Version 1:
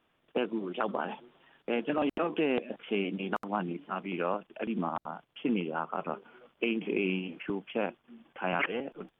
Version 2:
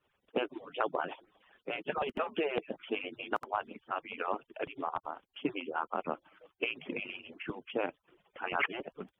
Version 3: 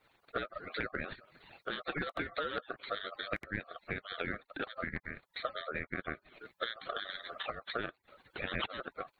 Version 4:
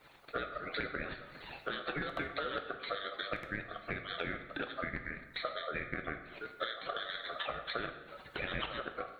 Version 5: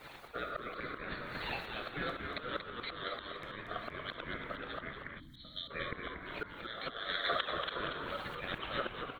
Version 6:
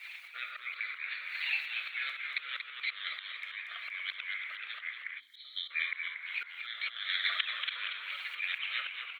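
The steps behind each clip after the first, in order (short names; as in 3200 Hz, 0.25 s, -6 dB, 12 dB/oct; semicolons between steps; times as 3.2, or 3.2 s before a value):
median-filter separation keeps percussive
compressor 2.5:1, threshold -47 dBFS, peak gain reduction 14.5 dB; ring modulator 930 Hz; gain +10.5 dB
compressor 2:1, threshold -51 dBFS, peak gain reduction 11.5 dB; plate-style reverb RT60 1.1 s, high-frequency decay 0.75×, DRR 5.5 dB; gain +8.5 dB
auto swell 0.416 s; frequency-shifting echo 0.234 s, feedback 61%, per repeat -85 Hz, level -6.5 dB; spectral gain 5.19–5.71, 330–3000 Hz -21 dB; gain +9 dB
resonant high-pass 2300 Hz, resonance Q 5.2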